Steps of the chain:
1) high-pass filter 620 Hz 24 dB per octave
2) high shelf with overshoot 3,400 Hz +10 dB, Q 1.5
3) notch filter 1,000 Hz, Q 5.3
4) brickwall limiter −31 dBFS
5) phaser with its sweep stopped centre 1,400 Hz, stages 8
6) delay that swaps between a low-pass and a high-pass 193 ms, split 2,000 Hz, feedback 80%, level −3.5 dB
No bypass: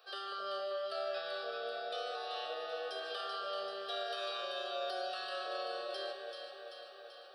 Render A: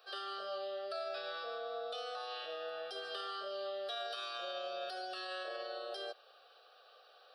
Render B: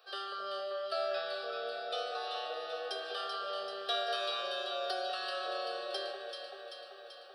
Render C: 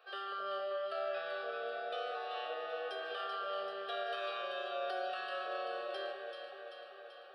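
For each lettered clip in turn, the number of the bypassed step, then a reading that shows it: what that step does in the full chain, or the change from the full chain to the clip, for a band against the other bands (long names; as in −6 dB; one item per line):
6, echo-to-direct ratio −2.0 dB to none audible
4, average gain reduction 1.5 dB
2, 4 kHz band −5.0 dB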